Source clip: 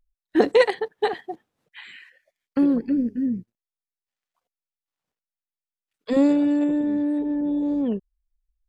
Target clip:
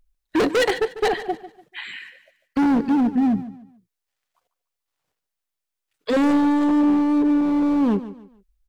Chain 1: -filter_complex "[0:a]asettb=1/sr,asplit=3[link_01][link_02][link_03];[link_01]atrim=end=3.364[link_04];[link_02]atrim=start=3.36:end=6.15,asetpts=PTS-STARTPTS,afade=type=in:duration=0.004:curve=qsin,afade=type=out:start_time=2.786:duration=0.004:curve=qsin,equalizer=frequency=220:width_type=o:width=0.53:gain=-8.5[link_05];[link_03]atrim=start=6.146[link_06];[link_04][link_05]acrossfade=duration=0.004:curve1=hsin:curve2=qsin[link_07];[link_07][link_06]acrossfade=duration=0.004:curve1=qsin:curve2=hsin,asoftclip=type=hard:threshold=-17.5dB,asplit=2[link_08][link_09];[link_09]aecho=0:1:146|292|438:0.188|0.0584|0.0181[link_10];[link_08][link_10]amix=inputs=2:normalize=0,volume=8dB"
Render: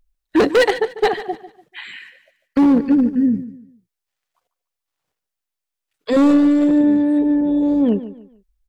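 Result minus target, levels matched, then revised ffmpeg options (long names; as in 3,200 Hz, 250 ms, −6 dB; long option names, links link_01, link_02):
hard clipping: distortion −5 dB
-filter_complex "[0:a]asettb=1/sr,asplit=3[link_01][link_02][link_03];[link_01]atrim=end=3.364[link_04];[link_02]atrim=start=3.36:end=6.15,asetpts=PTS-STARTPTS,afade=type=in:duration=0.004:curve=qsin,afade=type=out:start_time=2.786:duration=0.004:curve=qsin,equalizer=frequency=220:width_type=o:width=0.53:gain=-8.5[link_05];[link_03]atrim=start=6.146[link_06];[link_04][link_05]acrossfade=duration=0.004:curve1=hsin:curve2=qsin[link_07];[link_07][link_06]acrossfade=duration=0.004:curve1=qsin:curve2=hsin,asoftclip=type=hard:threshold=-24dB,asplit=2[link_08][link_09];[link_09]aecho=0:1:146|292|438:0.188|0.0584|0.0181[link_10];[link_08][link_10]amix=inputs=2:normalize=0,volume=8dB"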